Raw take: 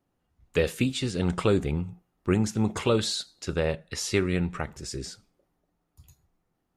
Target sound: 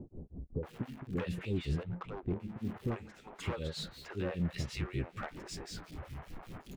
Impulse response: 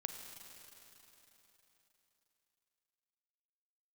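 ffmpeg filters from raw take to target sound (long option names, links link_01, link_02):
-filter_complex "[0:a]aeval=exprs='val(0)+0.5*0.0119*sgn(val(0))':channel_layout=same,acompressor=threshold=-29dB:ratio=5,flanger=delay=8.3:depth=7.2:regen=66:speed=1.4:shape=sinusoidal,acrossover=split=2300[link_01][link_02];[link_01]aeval=exprs='val(0)*(1-1/2+1/2*cos(2*PI*5.2*n/s))':channel_layout=same[link_03];[link_02]aeval=exprs='val(0)*(1-1/2-1/2*cos(2*PI*5.2*n/s))':channel_layout=same[link_04];[link_03][link_04]amix=inputs=2:normalize=0,asoftclip=type=hard:threshold=-35dB,bass=frequency=250:gain=2,treble=frequency=4000:gain=-13,acrossover=split=480[link_05][link_06];[link_06]adelay=630[link_07];[link_05][link_07]amix=inputs=2:normalize=0,asettb=1/sr,asplit=3[link_08][link_09][link_10];[link_08]atrim=end=1.834[link_11];[link_09]atrim=start=1.83:end=2.4,asetpts=PTS-STARTPTS,afade=type=in:duration=0.004:curve=qsin,afade=type=out:start_time=0.566:duration=0.004:curve=qsin,adynamicsmooth=sensitivity=7.5:basefreq=1100[link_12];[link_10]atrim=start=2.396[link_13];[link_11][link_12]acrossfade=duration=0.004:curve1=hsin:curve2=qsin[link_14];[link_14][link_13]acrossfade=duration=0.004:curve1=qsin:curve2=hsin,volume=6dB"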